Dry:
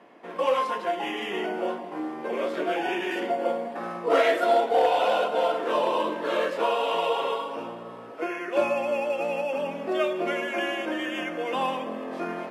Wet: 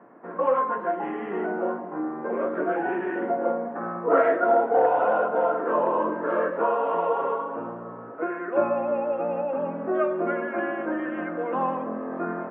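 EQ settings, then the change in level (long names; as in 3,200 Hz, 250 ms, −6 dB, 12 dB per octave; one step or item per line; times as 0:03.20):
high-pass filter 90 Hz
transistor ladder low-pass 1,700 Hz, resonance 50%
spectral tilt −3 dB per octave
+7.0 dB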